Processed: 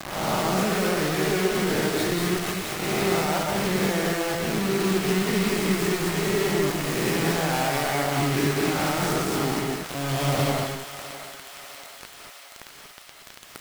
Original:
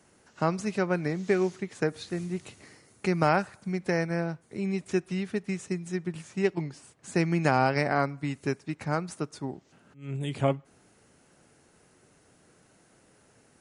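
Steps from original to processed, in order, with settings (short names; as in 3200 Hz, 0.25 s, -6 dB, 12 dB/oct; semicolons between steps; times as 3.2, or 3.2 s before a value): spectral swells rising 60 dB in 1.03 s; HPF 91 Hz 24 dB/oct; gate with hold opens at -49 dBFS; LPF 3200 Hz 6 dB/oct; bell 770 Hz +5 dB 0.21 oct; reverse; upward compressor, threshold -32 dBFS; reverse; limiter -18 dBFS, peak gain reduction 10.5 dB; compressor 16:1, threshold -30 dBFS, peak gain reduction 9 dB; bit-crush 6-bit; on a send: thinning echo 0.654 s, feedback 73%, high-pass 770 Hz, level -10.5 dB; on the sum: non-linear reverb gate 0.26 s rising, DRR -0.5 dB; gain +6.5 dB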